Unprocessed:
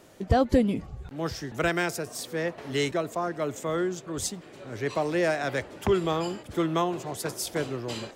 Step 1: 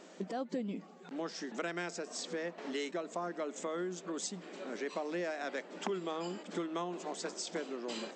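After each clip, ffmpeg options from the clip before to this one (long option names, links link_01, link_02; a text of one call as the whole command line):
ffmpeg -i in.wav -af "acompressor=threshold=-36dB:ratio=4,afftfilt=real='re*between(b*sr/4096,170,8200)':imag='im*between(b*sr/4096,170,8200)':win_size=4096:overlap=0.75" out.wav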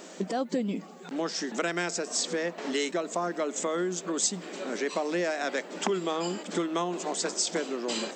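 ffmpeg -i in.wav -af "highshelf=frequency=7300:gain=12,volume=8dB" out.wav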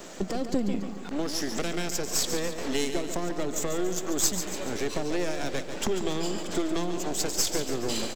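ffmpeg -i in.wav -filter_complex "[0:a]aeval=exprs='if(lt(val(0),0),0.251*val(0),val(0))':channel_layout=same,acrossover=split=480|3000[link_01][link_02][link_03];[link_02]acompressor=threshold=-43dB:ratio=6[link_04];[link_01][link_04][link_03]amix=inputs=3:normalize=0,aecho=1:1:142|284|426|568|710|852:0.355|0.181|0.0923|0.0471|0.024|0.0122,volume=5.5dB" out.wav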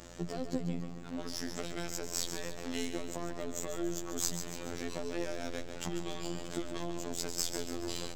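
ffmpeg -i in.wav -af "afreqshift=-21,afftfilt=real='hypot(re,im)*cos(PI*b)':imag='0':win_size=2048:overlap=0.75,aeval=exprs='val(0)+0.00316*(sin(2*PI*60*n/s)+sin(2*PI*2*60*n/s)/2+sin(2*PI*3*60*n/s)/3+sin(2*PI*4*60*n/s)/4+sin(2*PI*5*60*n/s)/5)':channel_layout=same,volume=-5dB" out.wav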